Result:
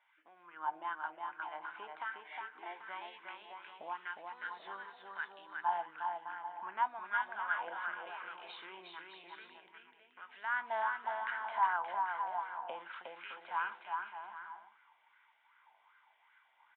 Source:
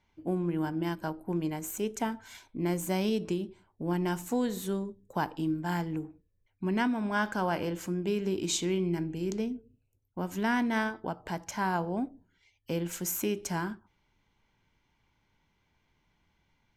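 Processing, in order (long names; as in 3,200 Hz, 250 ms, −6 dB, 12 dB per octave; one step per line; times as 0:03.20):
downward compressor 4 to 1, threshold −41 dBFS, peak gain reduction 14 dB
0:02.22–0:02.80: phaser with its sweep stopped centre 920 Hz, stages 8
downsampling to 8,000 Hz
auto-filter high-pass sine 1 Hz 870–1,900 Hz
bouncing-ball delay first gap 360 ms, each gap 0.7×, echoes 5
auto-filter bell 2.6 Hz 640–1,500 Hz +14 dB
level −2.5 dB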